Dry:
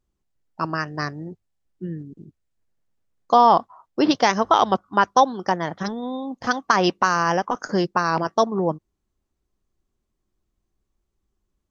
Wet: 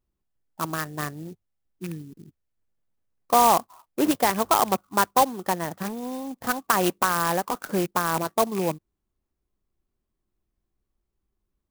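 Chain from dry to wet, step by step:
loose part that buzzes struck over −29 dBFS, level −24 dBFS
converter with an unsteady clock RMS 0.058 ms
level −3.5 dB

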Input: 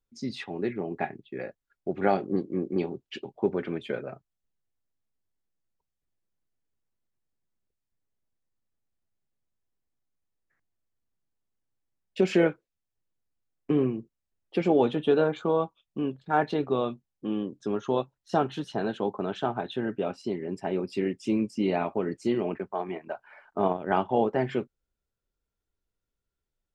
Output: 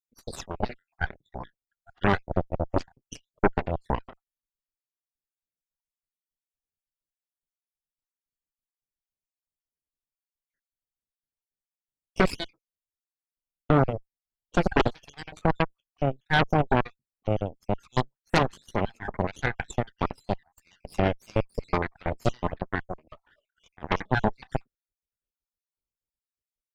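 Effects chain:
time-frequency cells dropped at random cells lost 62%
high-shelf EQ 4,900 Hz +10 dB
harmonic generator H 5 −22 dB, 7 −16 dB, 8 −8 dB, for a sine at −10 dBFS

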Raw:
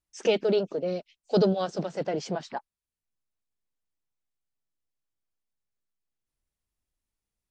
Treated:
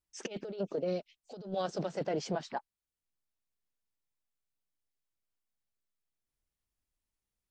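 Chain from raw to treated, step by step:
compressor whose output falls as the input rises −28 dBFS, ratio −0.5
level −6 dB

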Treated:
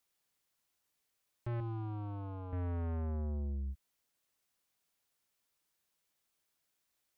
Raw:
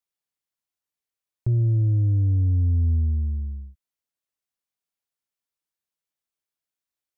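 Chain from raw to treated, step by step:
soft clipping −35 dBFS, distortion −8 dB
brickwall limiter −43.5 dBFS, peak gain reduction 8.5 dB
0:01.60–0:02.53: phaser with its sweep stopped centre 370 Hz, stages 8
level +8 dB

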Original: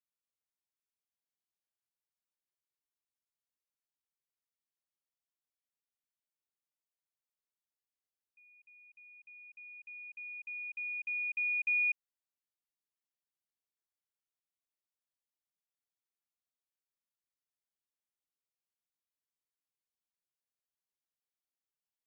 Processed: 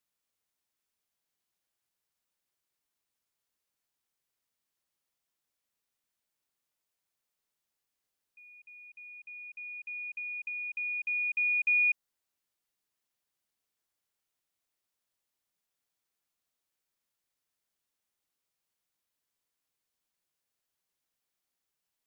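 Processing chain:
dynamic equaliser 2,400 Hz, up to −4 dB, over −45 dBFS
level +8.5 dB

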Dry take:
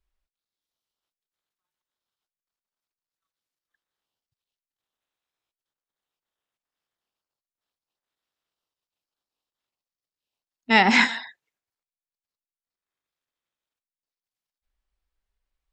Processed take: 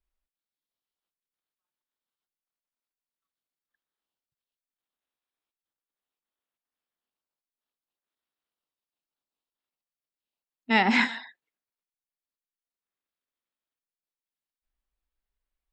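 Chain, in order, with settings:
graphic EQ with 15 bands 100 Hz −9 dB, 250 Hz +4 dB, 6,300 Hz −7 dB
level −5 dB

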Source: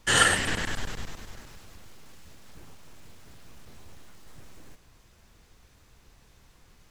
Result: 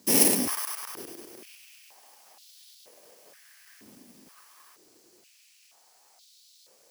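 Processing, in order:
samples in bit-reversed order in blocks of 32 samples
noise in a band 4,000–8,500 Hz −66 dBFS
high-pass on a step sequencer 2.1 Hz 240–3,700 Hz

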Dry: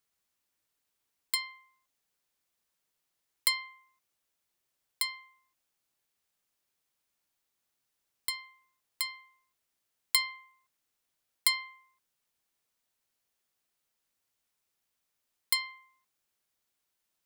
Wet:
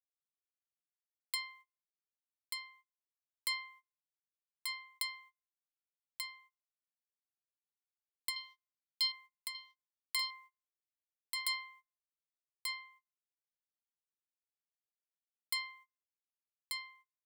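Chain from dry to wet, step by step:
noise gate −54 dBFS, range −29 dB
0:08.36–0:09.12: flat-topped bell 4,200 Hz +13 dB 1.2 octaves
brickwall limiter −17.5 dBFS, peak gain reduction 9 dB
single-tap delay 1,186 ms −4 dB
level −4 dB

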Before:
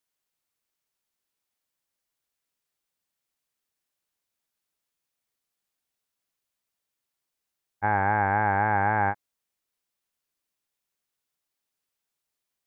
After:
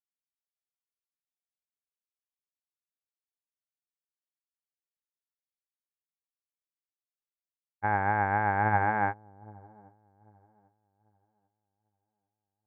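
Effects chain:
delay with a low-pass on its return 793 ms, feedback 60%, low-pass 520 Hz, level −5 dB
expander for the loud parts 2.5 to 1, over −46 dBFS

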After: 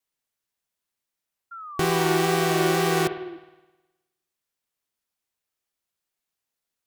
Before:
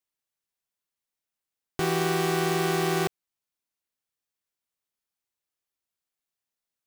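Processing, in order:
tape wow and flutter 27 cents
spring reverb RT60 1.1 s, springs 52 ms, chirp 55 ms, DRR 10.5 dB
sound drawn into the spectrogram fall, 0:01.51–0:03.37, 330–1,400 Hz −42 dBFS
level +3.5 dB

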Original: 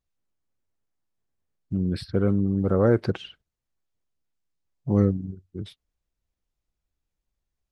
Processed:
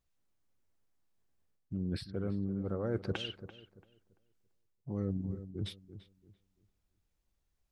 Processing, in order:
reversed playback
downward compressor 4 to 1, threshold −36 dBFS, peak gain reduction 18 dB
reversed playback
feedback echo with a low-pass in the loop 339 ms, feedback 27%, low-pass 1,800 Hz, level −12.5 dB
level +1.5 dB

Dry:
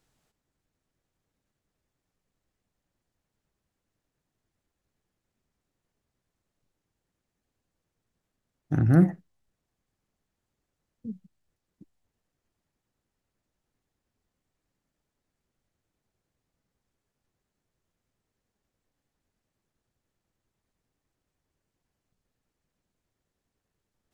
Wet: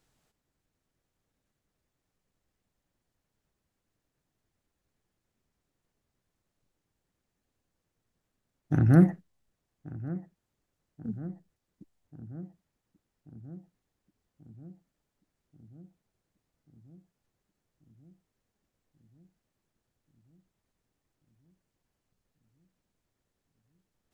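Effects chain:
feedback echo with a low-pass in the loop 1,136 ms, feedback 69%, low-pass 1,400 Hz, level −17 dB

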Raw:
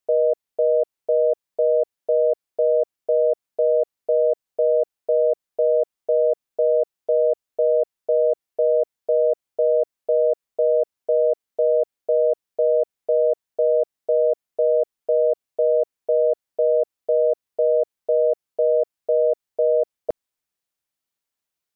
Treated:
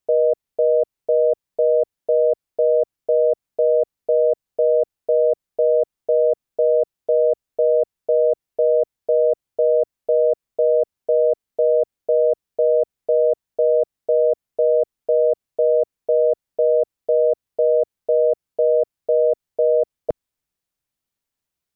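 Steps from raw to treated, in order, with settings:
low-shelf EQ 230 Hz +11 dB

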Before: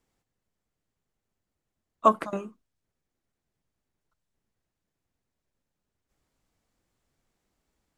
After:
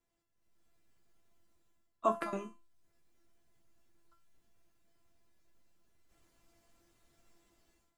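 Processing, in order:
automatic gain control gain up to 15 dB
brickwall limiter −8.5 dBFS, peak gain reduction 7.5 dB
tuned comb filter 340 Hz, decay 0.32 s, harmonics all, mix 90%
level +5.5 dB

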